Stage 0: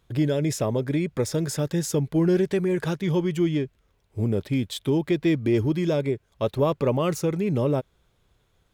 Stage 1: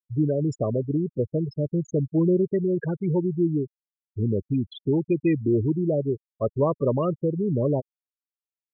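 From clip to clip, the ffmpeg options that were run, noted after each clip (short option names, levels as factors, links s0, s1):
-af "afftfilt=real='re*gte(hypot(re,im),0.112)':imag='im*gte(hypot(re,im),0.112)':win_size=1024:overlap=0.75"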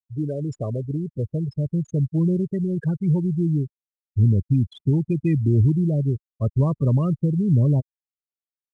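-af "asubboost=boost=8.5:cutoff=160,volume=0.668" -ar 22050 -c:a adpcm_ima_wav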